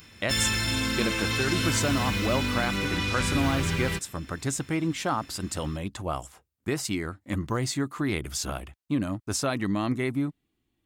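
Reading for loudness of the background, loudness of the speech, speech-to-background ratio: -27.0 LUFS, -30.0 LUFS, -3.0 dB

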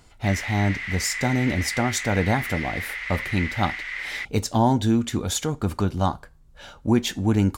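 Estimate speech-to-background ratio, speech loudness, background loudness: 5.5 dB, -24.5 LUFS, -30.0 LUFS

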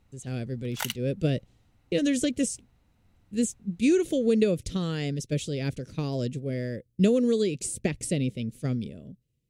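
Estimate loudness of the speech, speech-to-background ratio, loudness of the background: -28.0 LUFS, 8.0 dB, -36.0 LUFS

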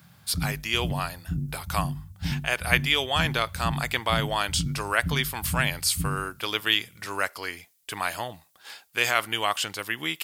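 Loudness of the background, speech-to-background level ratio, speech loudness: -33.5 LUFS, 6.5 dB, -27.0 LUFS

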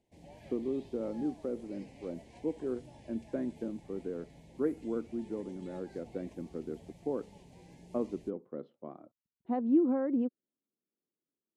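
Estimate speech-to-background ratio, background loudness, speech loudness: 18.5 dB, -55.0 LUFS, -36.5 LUFS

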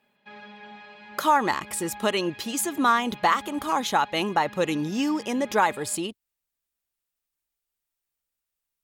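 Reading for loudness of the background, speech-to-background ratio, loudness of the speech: -44.5 LUFS, 19.5 dB, -25.0 LUFS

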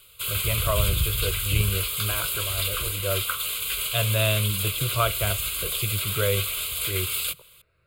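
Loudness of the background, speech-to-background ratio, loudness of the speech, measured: -25.5 LUFS, -3.5 dB, -29.0 LUFS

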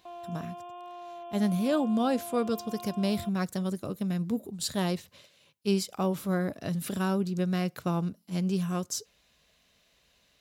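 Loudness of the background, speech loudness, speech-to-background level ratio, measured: -43.5 LUFS, -30.5 LUFS, 13.0 dB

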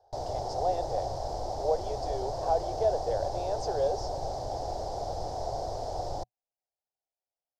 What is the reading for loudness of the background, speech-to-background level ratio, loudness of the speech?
-35.5 LUFS, 2.5 dB, -33.0 LUFS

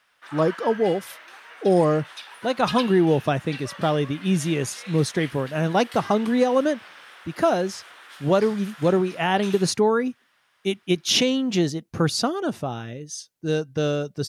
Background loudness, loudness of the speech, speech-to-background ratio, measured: -39.5 LUFS, -23.0 LUFS, 16.5 dB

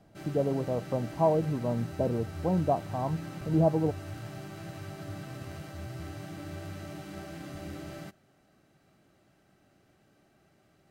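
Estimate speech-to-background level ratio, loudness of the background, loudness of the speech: 11.5 dB, -41.5 LUFS, -30.0 LUFS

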